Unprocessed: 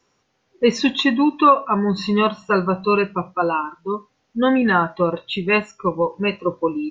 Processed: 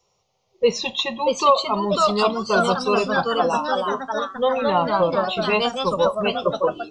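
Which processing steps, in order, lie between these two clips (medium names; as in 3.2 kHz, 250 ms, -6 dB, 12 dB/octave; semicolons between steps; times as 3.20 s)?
static phaser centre 670 Hz, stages 4; ever faster or slower copies 703 ms, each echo +2 st, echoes 3; trim +1.5 dB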